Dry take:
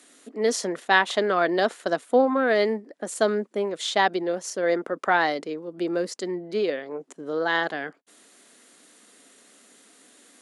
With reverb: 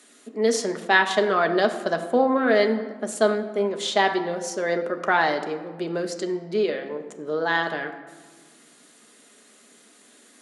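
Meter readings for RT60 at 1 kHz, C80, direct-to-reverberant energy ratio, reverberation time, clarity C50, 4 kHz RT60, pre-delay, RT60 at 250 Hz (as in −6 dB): 1.5 s, 11.5 dB, 4.5 dB, 1.5 s, 10.0 dB, 0.80 s, 5 ms, 2.1 s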